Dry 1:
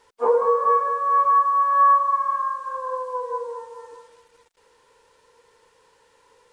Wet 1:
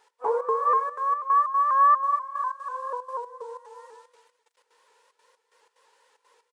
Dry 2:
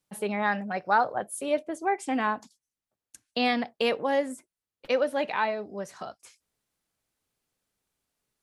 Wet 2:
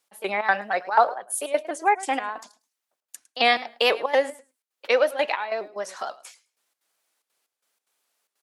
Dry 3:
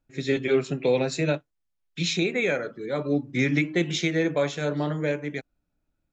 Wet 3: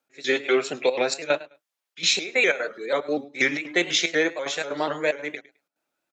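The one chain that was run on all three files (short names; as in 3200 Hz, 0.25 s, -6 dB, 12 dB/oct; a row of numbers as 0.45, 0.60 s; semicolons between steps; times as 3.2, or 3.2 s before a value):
step gate "x..xx.xxxxx.x" 185 bpm -12 dB; HPF 560 Hz 12 dB/oct; feedback echo 0.105 s, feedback 17%, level -19 dB; shaped vibrato saw up 4.1 Hz, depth 100 cents; match loudness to -24 LUFS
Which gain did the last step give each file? -2.5, +8.5, +7.5 dB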